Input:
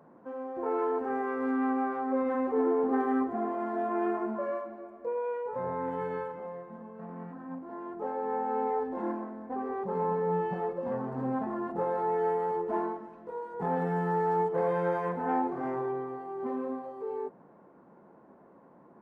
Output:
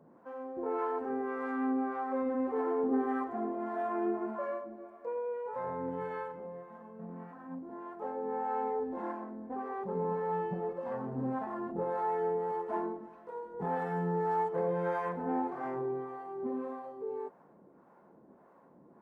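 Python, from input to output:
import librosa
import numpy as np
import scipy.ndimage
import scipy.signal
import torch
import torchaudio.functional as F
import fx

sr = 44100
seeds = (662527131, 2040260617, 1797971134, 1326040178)

y = fx.harmonic_tremolo(x, sr, hz=1.7, depth_pct=70, crossover_hz=550.0)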